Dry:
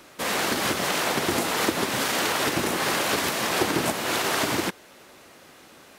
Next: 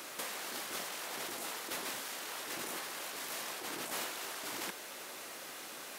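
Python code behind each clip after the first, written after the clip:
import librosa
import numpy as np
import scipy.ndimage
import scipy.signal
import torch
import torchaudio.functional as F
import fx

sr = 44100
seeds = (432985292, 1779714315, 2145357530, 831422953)

y = fx.highpass(x, sr, hz=470.0, slope=6)
y = fx.high_shelf(y, sr, hz=6300.0, db=7.0)
y = fx.over_compress(y, sr, threshold_db=-35.0, ratio=-1.0)
y = y * librosa.db_to_amplitude(-6.5)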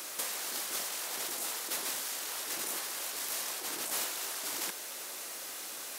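y = fx.bass_treble(x, sr, bass_db=-5, treble_db=8)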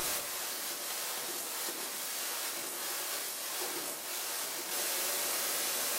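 y = fx.over_compress(x, sr, threshold_db=-42.0, ratio=-1.0)
y = fx.wow_flutter(y, sr, seeds[0], rate_hz=2.1, depth_cents=21.0)
y = fx.room_shoebox(y, sr, seeds[1], volume_m3=92.0, walls='mixed', distance_m=0.97)
y = y * librosa.db_to_amplitude(1.5)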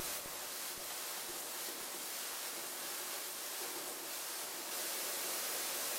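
y = fx.vibrato(x, sr, rate_hz=7.3, depth_cents=49.0)
y = fx.quant_dither(y, sr, seeds[2], bits=10, dither='none')
y = fx.echo_alternate(y, sr, ms=259, hz=1300.0, feedback_pct=80, wet_db=-4.5)
y = y * librosa.db_to_amplitude(-7.0)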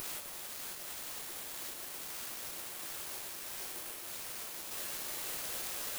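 y = (np.kron(x[::4], np.eye(4)[0]) * 4)[:len(x)]
y = y * librosa.db_to_amplitude(-6.0)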